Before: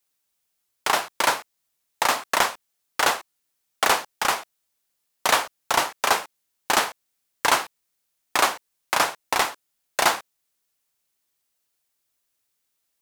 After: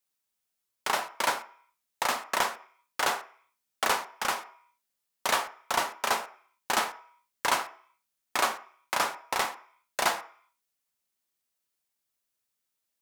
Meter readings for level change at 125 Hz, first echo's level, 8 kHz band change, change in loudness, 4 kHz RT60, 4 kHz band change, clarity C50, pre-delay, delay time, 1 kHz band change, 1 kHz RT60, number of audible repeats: -7.0 dB, no echo, -7.0 dB, -6.5 dB, 0.55 s, -7.0 dB, 13.5 dB, 3 ms, no echo, -6.0 dB, 0.55 s, no echo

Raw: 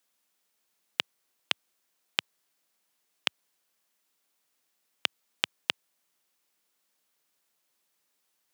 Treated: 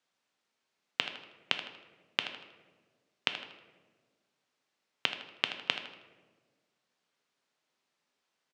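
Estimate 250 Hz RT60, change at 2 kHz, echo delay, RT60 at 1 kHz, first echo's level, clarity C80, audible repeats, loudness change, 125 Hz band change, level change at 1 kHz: 1.9 s, -0.5 dB, 79 ms, 1.2 s, -11.5 dB, 11.0 dB, 2, -2.0 dB, +1.5 dB, +0.5 dB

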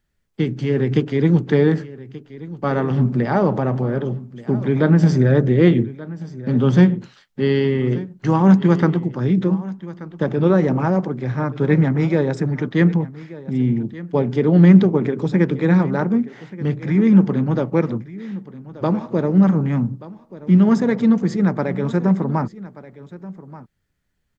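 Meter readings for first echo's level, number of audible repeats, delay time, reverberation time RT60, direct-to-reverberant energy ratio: -17.5 dB, 1, 1181 ms, no reverb, no reverb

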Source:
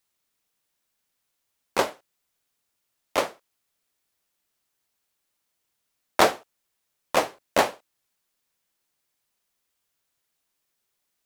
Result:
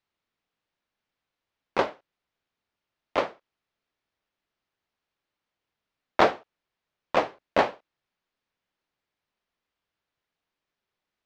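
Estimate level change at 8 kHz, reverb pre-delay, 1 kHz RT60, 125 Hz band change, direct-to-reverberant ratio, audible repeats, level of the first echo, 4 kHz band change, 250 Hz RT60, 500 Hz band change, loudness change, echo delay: under -15 dB, no reverb, no reverb, 0.0 dB, no reverb, no echo, no echo, -6.0 dB, no reverb, -0.5 dB, -1.5 dB, no echo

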